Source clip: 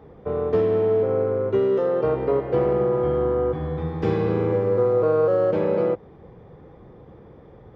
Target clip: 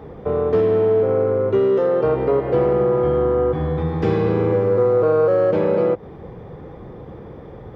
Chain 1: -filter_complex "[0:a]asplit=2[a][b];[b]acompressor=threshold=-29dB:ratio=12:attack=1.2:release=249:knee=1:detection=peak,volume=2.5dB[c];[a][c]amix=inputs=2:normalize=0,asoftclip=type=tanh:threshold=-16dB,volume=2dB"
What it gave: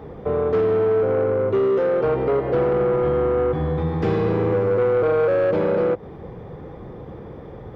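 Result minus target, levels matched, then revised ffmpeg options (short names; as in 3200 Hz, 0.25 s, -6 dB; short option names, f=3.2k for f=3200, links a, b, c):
soft clip: distortion +12 dB
-filter_complex "[0:a]asplit=2[a][b];[b]acompressor=threshold=-29dB:ratio=12:attack=1.2:release=249:knee=1:detection=peak,volume=2.5dB[c];[a][c]amix=inputs=2:normalize=0,asoftclip=type=tanh:threshold=-8dB,volume=2dB"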